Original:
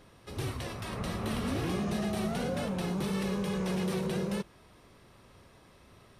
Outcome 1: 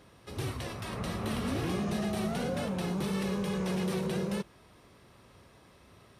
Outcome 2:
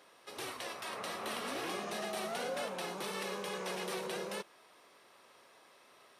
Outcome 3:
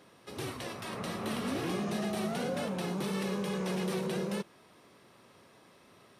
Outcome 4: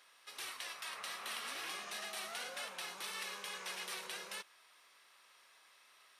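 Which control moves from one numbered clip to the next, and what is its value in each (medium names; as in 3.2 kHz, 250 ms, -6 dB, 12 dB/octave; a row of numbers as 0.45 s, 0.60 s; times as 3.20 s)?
high-pass, cutoff frequency: 45 Hz, 520 Hz, 180 Hz, 1.4 kHz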